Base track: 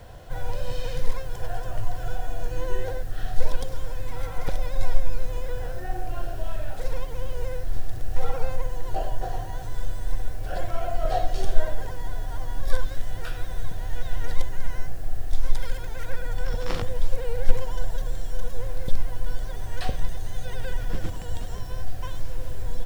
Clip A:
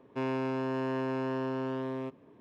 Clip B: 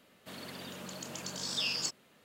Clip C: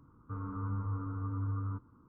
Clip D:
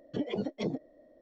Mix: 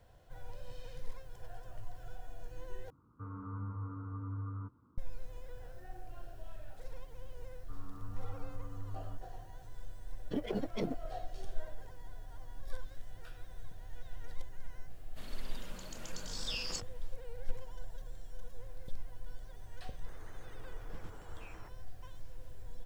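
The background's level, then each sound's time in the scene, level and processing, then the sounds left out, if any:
base track −18 dB
0:02.90: overwrite with C −5 dB + high-pass filter 51 Hz
0:07.39: mix in C −11.5 dB
0:10.17: mix in D −2 dB + mu-law and A-law mismatch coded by A
0:14.90: mix in B −6.5 dB
0:19.79: mix in B −7.5 dB + single-sideband voice off tune −160 Hz 450–2,100 Hz
not used: A

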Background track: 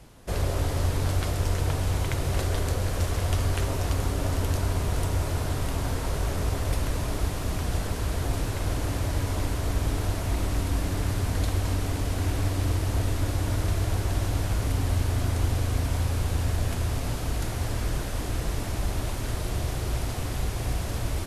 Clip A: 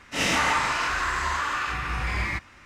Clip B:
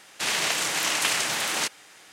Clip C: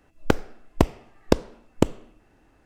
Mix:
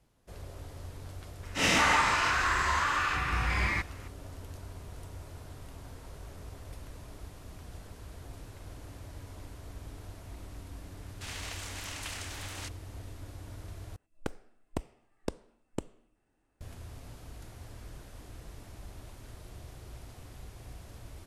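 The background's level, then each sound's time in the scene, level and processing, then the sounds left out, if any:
background track −18.5 dB
0:01.43: mix in A −1.5 dB
0:11.01: mix in B −16.5 dB
0:13.96: overwrite with C −16.5 dB + parametric band 8,800 Hz +11 dB 0.38 octaves

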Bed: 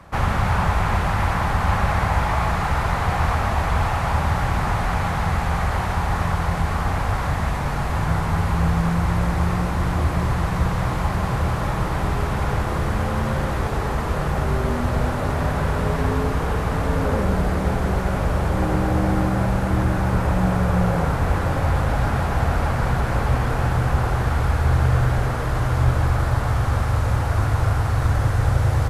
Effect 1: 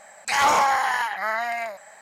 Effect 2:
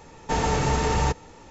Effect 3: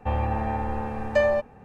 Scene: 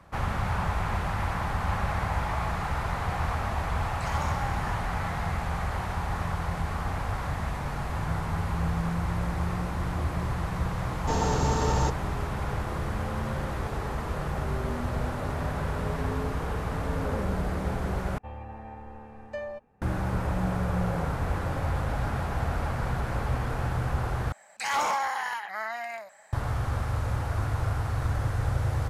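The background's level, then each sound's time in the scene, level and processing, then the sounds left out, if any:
bed −8.5 dB
0:03.73: mix in 1 −17 dB
0:10.78: mix in 2 −3 dB + parametric band 2,200 Hz −10.5 dB 0.69 octaves
0:18.18: overwrite with 3 −15 dB
0:24.32: overwrite with 1 −8 dB

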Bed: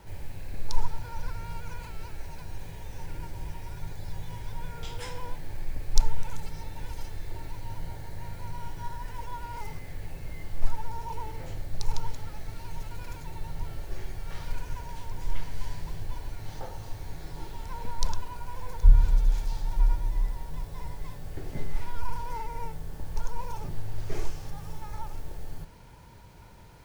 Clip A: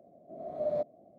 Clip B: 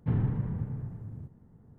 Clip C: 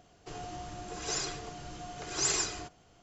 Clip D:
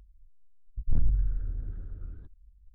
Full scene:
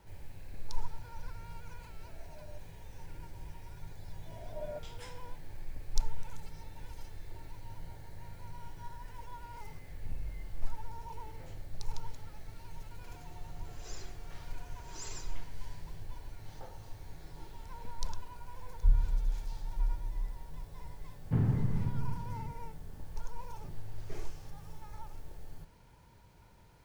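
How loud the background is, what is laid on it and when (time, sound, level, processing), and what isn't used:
bed −9 dB
0:01.76: mix in A −16 dB + downward compressor 2 to 1, threshold −42 dBFS
0:03.96: mix in A −11 dB
0:09.14: mix in D −15.5 dB
0:12.77: mix in C −16.5 dB
0:21.25: mix in B −1 dB

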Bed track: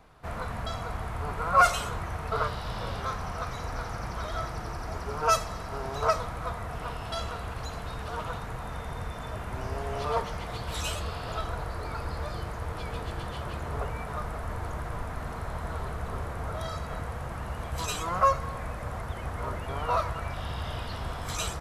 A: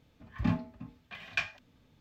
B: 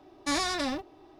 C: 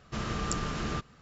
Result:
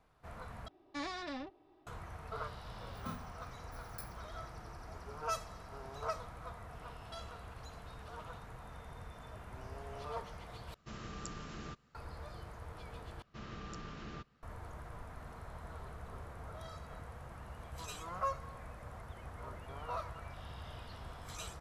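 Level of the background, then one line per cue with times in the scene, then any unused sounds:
bed track −13.5 dB
0:00.68: overwrite with B −11.5 dB + low-pass filter 3,800 Hz
0:02.61: mix in A −17 dB + samples in bit-reversed order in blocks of 16 samples
0:10.74: overwrite with C −13 dB
0:13.22: overwrite with C −13.5 dB + low-pass filter 4,900 Hz

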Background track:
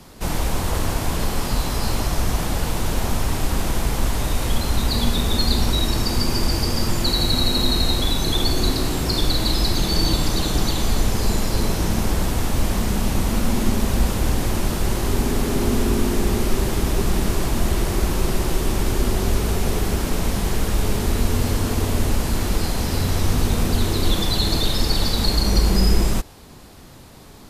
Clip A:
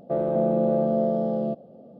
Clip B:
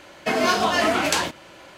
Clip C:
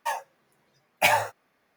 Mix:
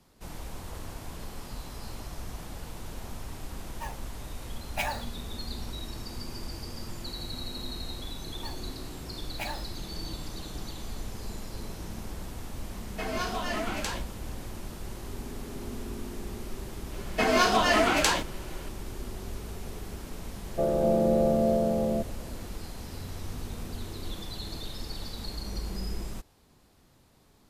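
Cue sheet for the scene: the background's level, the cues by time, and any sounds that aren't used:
background track −18 dB
0:03.75: mix in C −11 dB
0:08.37: mix in C −16.5 dB
0:12.72: mix in B −12.5 dB
0:16.92: mix in B −2.5 dB
0:20.48: mix in A −1.5 dB

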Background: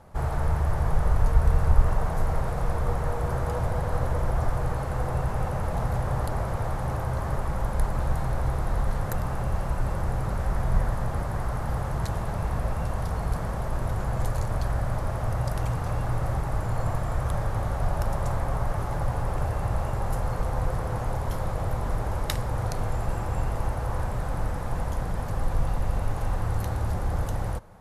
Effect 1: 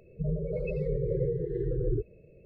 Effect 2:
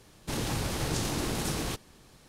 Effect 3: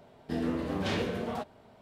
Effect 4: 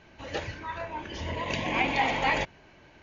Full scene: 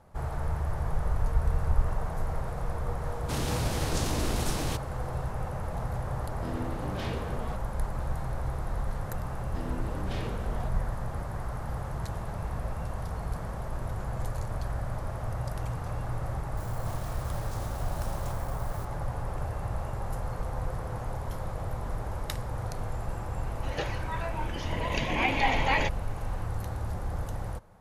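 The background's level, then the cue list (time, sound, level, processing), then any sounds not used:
background −6 dB
0:03.01: mix in 2 −1 dB
0:06.13: mix in 3 −6 dB
0:09.25: mix in 3 −8 dB
0:16.57: mix in 2 −17.5 dB + spike at every zero crossing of −27.5 dBFS
0:23.44: mix in 4 −0.5 dB
not used: 1

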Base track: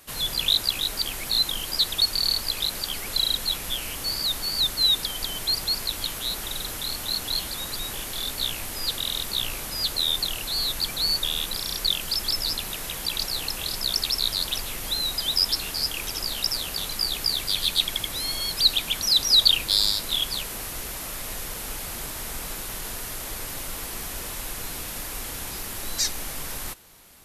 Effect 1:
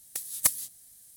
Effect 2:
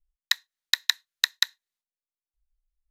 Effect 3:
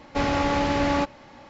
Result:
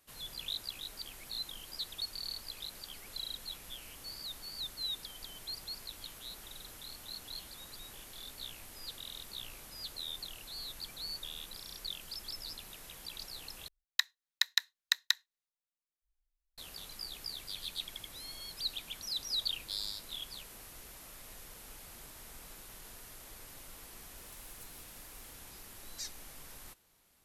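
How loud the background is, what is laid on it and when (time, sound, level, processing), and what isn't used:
base track −17.5 dB
0:13.68: overwrite with 2 −6.5 dB
0:24.17: mix in 1 −9 dB + downward compressor, threshold −45 dBFS
not used: 3

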